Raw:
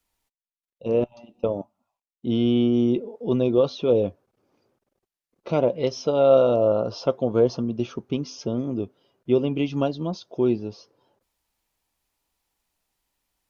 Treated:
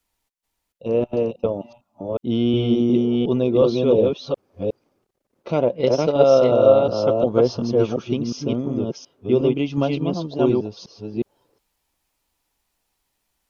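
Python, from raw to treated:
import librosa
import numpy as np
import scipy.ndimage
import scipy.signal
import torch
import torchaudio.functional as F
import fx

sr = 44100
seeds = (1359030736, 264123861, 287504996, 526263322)

y = fx.reverse_delay(x, sr, ms=362, wet_db=-1.5)
y = fx.transient(y, sr, attack_db=4, sustain_db=-4, at=(5.66, 6.23))
y = y * 10.0 ** (1.5 / 20.0)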